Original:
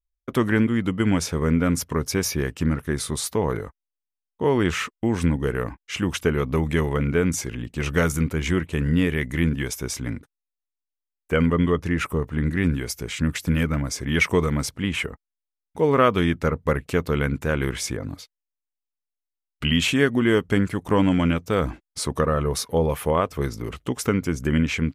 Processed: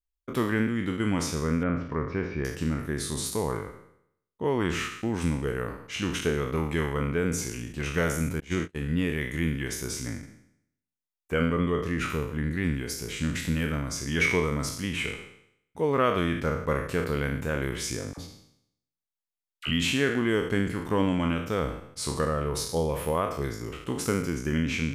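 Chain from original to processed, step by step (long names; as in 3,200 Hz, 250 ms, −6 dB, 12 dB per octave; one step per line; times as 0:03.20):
peak hold with a decay on every bin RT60 0.71 s
0:01.63–0:02.45: low-pass filter 2,500 Hz 24 dB per octave
0:08.40–0:08.98: noise gate −21 dBFS, range −37 dB
0:18.13–0:19.70: all-pass dispersion lows, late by 45 ms, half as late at 830 Hz
level −7 dB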